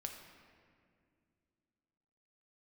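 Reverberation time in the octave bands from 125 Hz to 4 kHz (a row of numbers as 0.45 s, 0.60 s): 3.1 s, 3.3 s, 2.6 s, 2.0 s, 1.9 s, 1.3 s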